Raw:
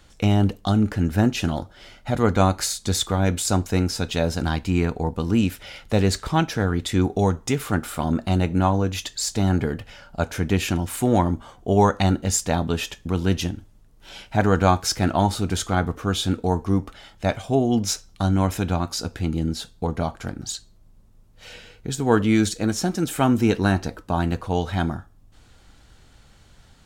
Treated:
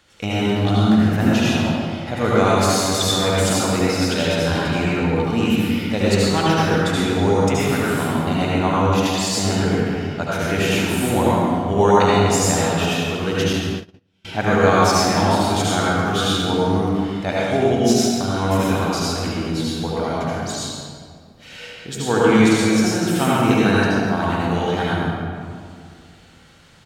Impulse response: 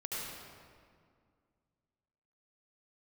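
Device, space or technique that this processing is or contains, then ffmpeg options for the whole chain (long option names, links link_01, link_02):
PA in a hall: -filter_complex "[0:a]highpass=frequency=160:poles=1,equalizer=frequency=2400:width_type=o:width=1.8:gain=4,aecho=1:1:139:0.282[link_01];[1:a]atrim=start_sample=2205[link_02];[link_01][link_02]afir=irnorm=-1:irlink=0,asettb=1/sr,asplit=3[link_03][link_04][link_05];[link_03]atrim=end=13.534[link_06];[link_04]atrim=start=13.53:end=14.25,asetpts=PTS-STARTPTS,afade=type=in:duration=0.004:curve=qsin,afade=type=out:start_time=0.716:duration=0.004:curve=qsin,agate=range=-33dB:threshold=-27dB:ratio=16:detection=peak[link_07];[link_05]atrim=start=14.246[link_08];[link_06][link_07]acrossfade=duration=0.004:curve1=hsin:curve2=qsin[link_09];[link_09][link_08]acrossfade=duration=0.004:curve1=qsin:curve2=hsin,volume=2dB"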